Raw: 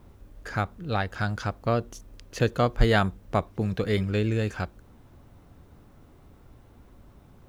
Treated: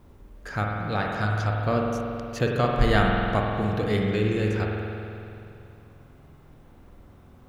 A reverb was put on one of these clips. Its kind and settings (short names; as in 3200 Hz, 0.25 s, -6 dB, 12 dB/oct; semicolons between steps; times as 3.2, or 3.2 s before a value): spring tank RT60 2.7 s, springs 47 ms, chirp 80 ms, DRR -1 dB; gain -1 dB